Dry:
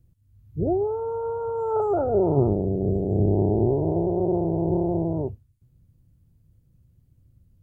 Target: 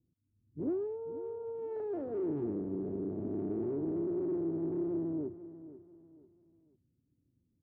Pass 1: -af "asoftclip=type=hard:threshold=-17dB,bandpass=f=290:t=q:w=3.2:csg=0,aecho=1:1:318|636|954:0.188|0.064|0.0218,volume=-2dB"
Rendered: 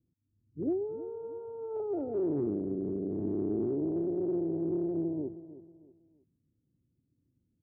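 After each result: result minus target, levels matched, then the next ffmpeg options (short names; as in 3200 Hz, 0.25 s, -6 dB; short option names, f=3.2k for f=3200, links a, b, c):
echo 0.174 s early; hard clip: distortion -8 dB
-af "asoftclip=type=hard:threshold=-17dB,bandpass=f=290:t=q:w=3.2:csg=0,aecho=1:1:492|984|1476:0.188|0.064|0.0218,volume=-2dB"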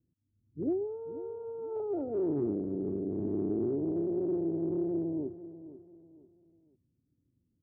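hard clip: distortion -8 dB
-af "asoftclip=type=hard:threshold=-23dB,bandpass=f=290:t=q:w=3.2:csg=0,aecho=1:1:492|984|1476:0.188|0.064|0.0218,volume=-2dB"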